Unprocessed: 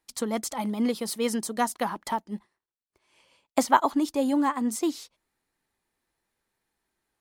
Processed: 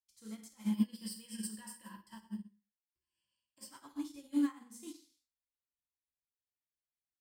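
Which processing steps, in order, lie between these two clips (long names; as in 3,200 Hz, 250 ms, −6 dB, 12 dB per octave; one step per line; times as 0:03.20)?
guitar amp tone stack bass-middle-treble 6-0-2
slap from a distant wall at 21 metres, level −19 dB
brickwall limiter −41 dBFS, peak gain reduction 11 dB
0:00.64–0:03.70: EQ curve with evenly spaced ripples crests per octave 1.3, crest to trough 15 dB
convolution reverb, pre-delay 3 ms, DRR −2 dB
expander for the loud parts 2.5 to 1, over −52 dBFS
level +11 dB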